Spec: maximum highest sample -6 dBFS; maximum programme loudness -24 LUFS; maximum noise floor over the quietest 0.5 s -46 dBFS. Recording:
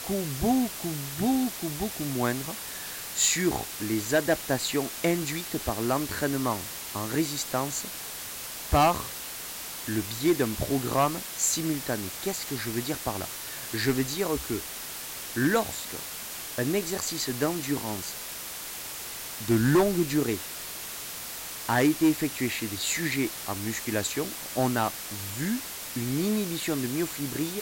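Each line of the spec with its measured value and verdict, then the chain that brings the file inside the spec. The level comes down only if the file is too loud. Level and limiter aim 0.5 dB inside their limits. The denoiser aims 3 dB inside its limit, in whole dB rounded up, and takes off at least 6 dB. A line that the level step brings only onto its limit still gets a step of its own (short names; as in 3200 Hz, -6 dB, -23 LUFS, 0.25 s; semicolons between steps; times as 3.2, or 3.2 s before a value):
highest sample -14.0 dBFS: OK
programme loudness -28.5 LUFS: OK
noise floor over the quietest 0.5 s -38 dBFS: fail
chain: denoiser 11 dB, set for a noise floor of -38 dBFS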